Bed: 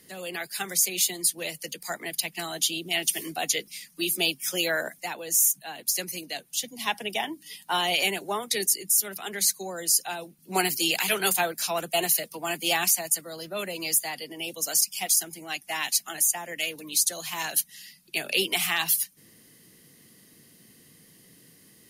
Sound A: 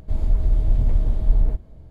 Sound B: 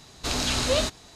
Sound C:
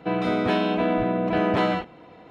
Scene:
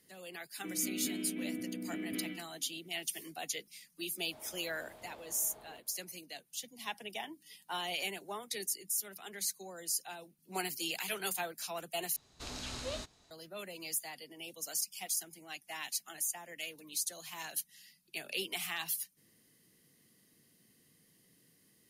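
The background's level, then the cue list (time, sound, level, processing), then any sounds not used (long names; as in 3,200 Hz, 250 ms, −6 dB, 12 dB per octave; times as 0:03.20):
bed −12.5 dB
0:00.58: mix in C −5 dB + formant filter i
0:04.23: mix in A −7.5 dB + high-pass filter 680 Hz
0:12.16: overwrite with B −16.5 dB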